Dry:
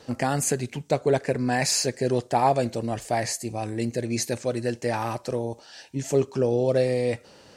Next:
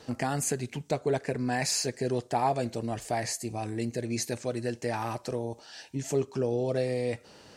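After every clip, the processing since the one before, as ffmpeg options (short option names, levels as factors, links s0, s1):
-filter_complex "[0:a]bandreject=f=540:w=12,asplit=2[s0][s1];[s1]acompressor=threshold=0.0251:ratio=6,volume=1.12[s2];[s0][s2]amix=inputs=2:normalize=0,volume=0.422"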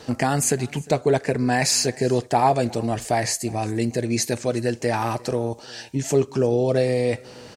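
-af "aecho=1:1:354:0.0668,volume=2.66"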